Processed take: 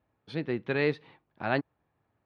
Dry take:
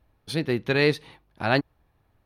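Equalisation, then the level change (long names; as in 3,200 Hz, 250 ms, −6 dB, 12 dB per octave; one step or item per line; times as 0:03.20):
band-pass filter 120–2,700 Hz
−5.5 dB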